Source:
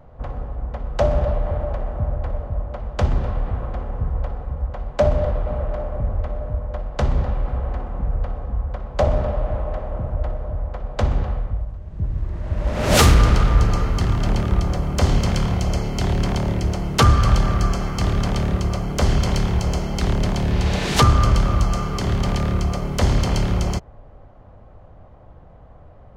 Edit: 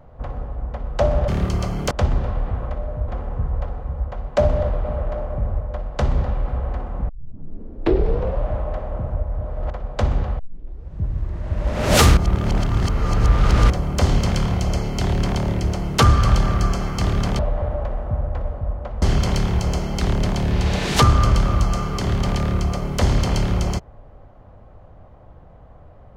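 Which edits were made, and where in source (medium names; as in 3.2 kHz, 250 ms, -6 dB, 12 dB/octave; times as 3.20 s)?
1.28–2.91 s: swap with 18.39–19.02 s
6.23–6.61 s: move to 3.70 s
8.09 s: tape start 1.36 s
10.23–10.71 s: reverse
11.39 s: tape start 0.56 s
13.17–14.70 s: reverse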